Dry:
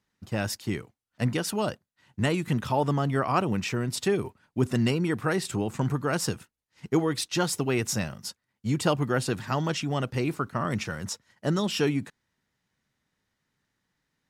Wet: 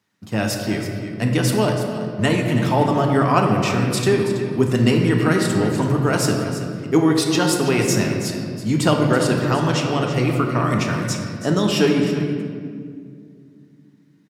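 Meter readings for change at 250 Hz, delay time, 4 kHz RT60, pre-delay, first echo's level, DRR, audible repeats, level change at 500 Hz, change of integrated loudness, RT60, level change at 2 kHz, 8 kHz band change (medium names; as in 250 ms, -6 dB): +10.0 dB, 328 ms, 1.3 s, 3 ms, -11.5 dB, 1.0 dB, 1, +9.5 dB, +8.5 dB, 2.1 s, +8.5 dB, +7.0 dB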